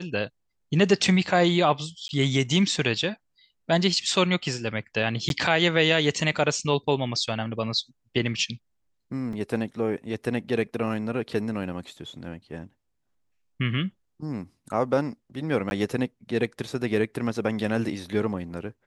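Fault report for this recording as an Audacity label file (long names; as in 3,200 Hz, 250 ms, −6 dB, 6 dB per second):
2.080000	2.090000	drop-out 11 ms
5.290000	5.300000	drop-out 12 ms
9.330000	9.330000	drop-out 3 ms
15.700000	15.710000	drop-out 11 ms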